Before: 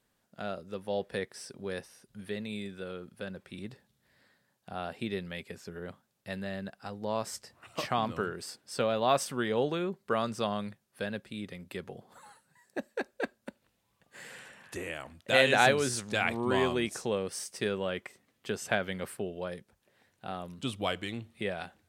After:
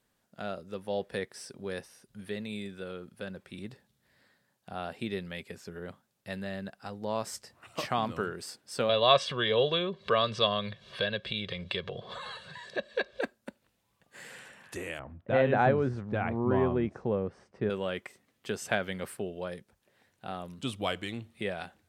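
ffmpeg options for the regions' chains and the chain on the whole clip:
-filter_complex "[0:a]asettb=1/sr,asplit=3[s0][s1][s2];[s0]atrim=end=8.894[s3];[s1]atrim=start=8.89:end=13.21,asetpts=PTS-STARTPTS,afade=t=in:d=0.004:c=qsin,afade=t=out:st=4.316:d=0.004:c=qsin,aecho=1:1:1.8:0.75,atrim=end_sample=190512,acompressor=mode=upward:threshold=0.0316:ratio=2.5:attack=3.2:release=140:knee=2.83:detection=peak,lowpass=f=3600:t=q:w=3.7[s4];[s2]atrim=start=13.206[s5];[s3][s4]acrossfade=d=0.004:c1=hsin:c2=qsin[s6];[s6][s5]acrossfade=d=0.004:c1=qsin:c2=hsin,asettb=1/sr,asplit=3[s7][s8][s9];[s7]atrim=end=14.994[s10];[s8]atrim=start=14.99:end=17.7,asetpts=PTS-STARTPTS,afade=t=in:d=0.004:c=qsin,afade=t=out:st=2.706:d=0.004:c=qsin,lowpass=1200,lowshelf=f=150:g=10.5[s11];[s9]atrim=start=17.696[s12];[s10][s11]acrossfade=d=0.004:c1=hsin:c2=qsin[s13];[s13][s12]acrossfade=d=0.004:c1=qsin:c2=hsin"

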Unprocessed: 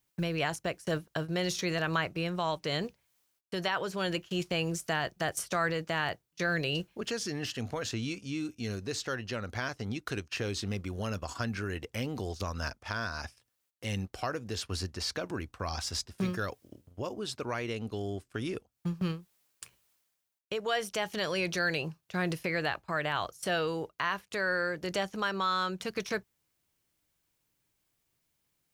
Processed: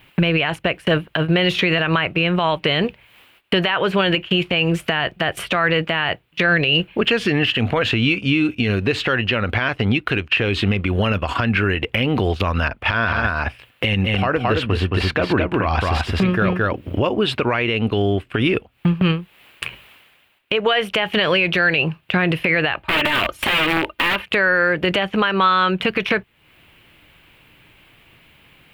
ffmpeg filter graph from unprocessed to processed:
-filter_complex "[0:a]asettb=1/sr,asplit=3[s0][s1][s2];[s0]atrim=end=12.684[s3];[s1]atrim=start=12.68:end=17.13,asetpts=PTS-STARTPTS,afade=t=in:d=0.004:c=qsin,afade=t=out:st=4.446:d=0.004:c=qsin,aecho=1:1:219:0.631,atrim=end_sample=196245,adynamicequalizer=threshold=0.00398:dfrequency=1800:dqfactor=0.7:tfrequency=1800:tqfactor=0.7:attack=5:release=100:ratio=0.375:range=3.5:mode=cutabove:tftype=highshelf[s4];[s2]atrim=start=17.126[s5];[s3][s4]acrossfade=d=0.004:c1=hsin:c2=qsin[s6];[s6][s5]acrossfade=d=0.004:c1=qsin:c2=hsin,asettb=1/sr,asplit=3[s7][s8][s9];[s7]atrim=end=22.834[s10];[s8]atrim=start=22.83:end=24.26,asetpts=PTS-STARTPTS,afade=t=in:d=0.004:c=qsin,afade=t=out:st=1.426:d=0.004:c=qsin,aecho=1:1:3.3:0.73,atrim=end_sample=63063,acompressor=threshold=0.0126:ratio=2:attack=3.2:release=140:knee=1:detection=peak,aeval=exprs='(mod(42.2*val(0)+1,2)-1)/42.2':c=same[s11];[s9]atrim=start=24.256[s12];[s10][s11]acrossfade=d=0.004:c1=hsin:c2=qsin[s13];[s13][s12]acrossfade=d=0.004:c1=qsin:c2=hsin,highshelf=f=4100:t=q:w=3:g=-14,acompressor=threshold=0.00316:ratio=2.5,alimiter=level_in=63.1:limit=0.891:release=50:level=0:latency=1,volume=0.473"

